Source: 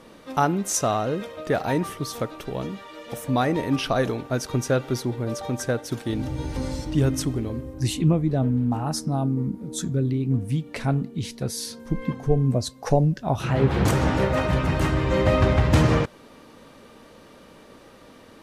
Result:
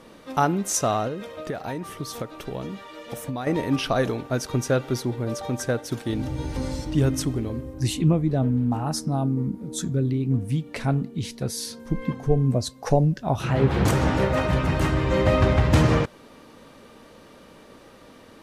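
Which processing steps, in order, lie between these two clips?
1.07–3.47 compressor 12:1, threshold -27 dBFS, peak gain reduction 10 dB

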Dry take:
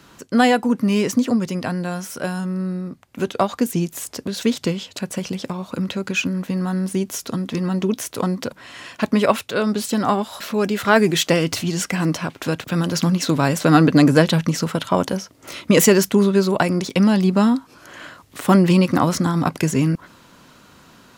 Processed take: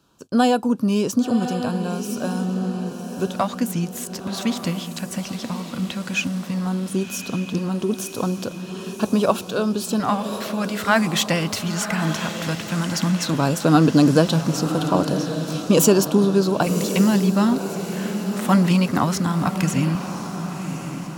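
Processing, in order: gate -40 dBFS, range -11 dB; LFO notch square 0.15 Hz 410–2000 Hz; diffused feedback echo 1.089 s, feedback 50%, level -8.5 dB; gain -1.5 dB

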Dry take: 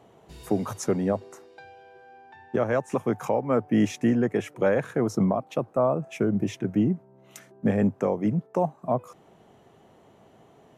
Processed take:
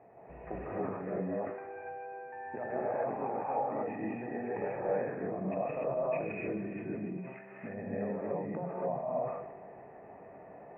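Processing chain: 2.61–4.73 bell 820 Hz +14 dB 0.35 oct; compressor 12:1, threshold -35 dBFS, peak gain reduction 21.5 dB; rippled Chebyshev low-pass 2600 Hz, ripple 9 dB; thinning echo 0.156 s, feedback 81%, high-pass 440 Hz, level -15 dB; non-linear reverb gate 0.32 s rising, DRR -7.5 dB; sustainer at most 50 dB/s

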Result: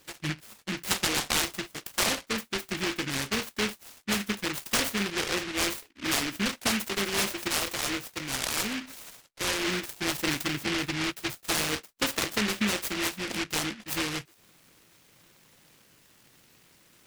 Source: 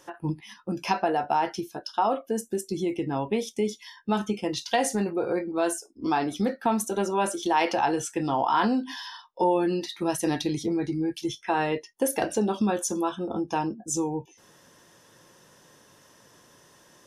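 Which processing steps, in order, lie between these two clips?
7.48–9.68 flange 1.1 Hz, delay 0.8 ms, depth 2.5 ms, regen +53%; noise-modulated delay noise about 2100 Hz, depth 0.43 ms; gain -3 dB

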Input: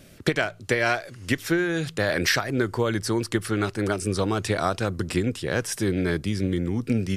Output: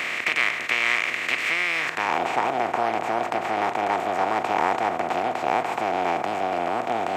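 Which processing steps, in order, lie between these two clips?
per-bin compression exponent 0.2; band-pass sweep 1400 Hz -> 650 Hz, 1.75–2.25; formant shift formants +6 st

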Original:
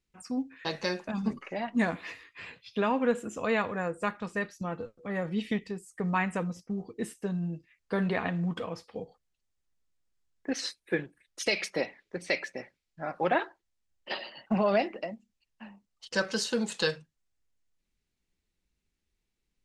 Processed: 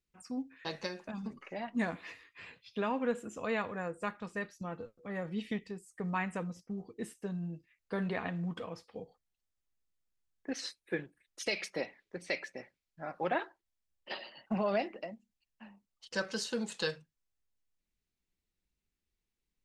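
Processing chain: 0.86–1.4 compressor, threshold -31 dBFS, peak gain reduction 7.5 dB; gain -6 dB

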